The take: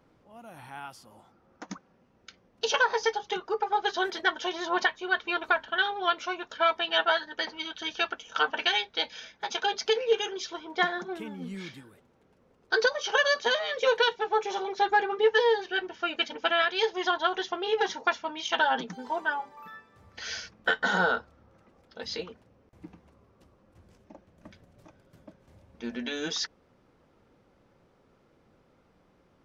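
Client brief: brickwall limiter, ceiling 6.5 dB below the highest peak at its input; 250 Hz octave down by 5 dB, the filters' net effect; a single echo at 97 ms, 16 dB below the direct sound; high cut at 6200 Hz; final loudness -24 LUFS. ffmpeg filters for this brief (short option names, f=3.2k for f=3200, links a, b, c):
-af "lowpass=6.2k,equalizer=f=250:t=o:g=-8.5,alimiter=limit=-19.5dB:level=0:latency=1,aecho=1:1:97:0.158,volume=7.5dB"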